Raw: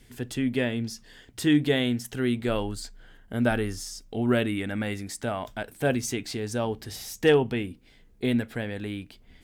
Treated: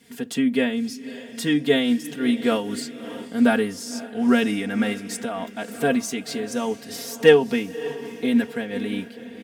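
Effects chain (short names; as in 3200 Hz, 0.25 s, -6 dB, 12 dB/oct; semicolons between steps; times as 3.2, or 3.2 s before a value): HPF 110 Hz 24 dB/oct; comb 4.3 ms, depth 93%; diffused feedback echo 0.561 s, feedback 49%, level -14 dB; noise-modulated level, depth 65%; gain +4.5 dB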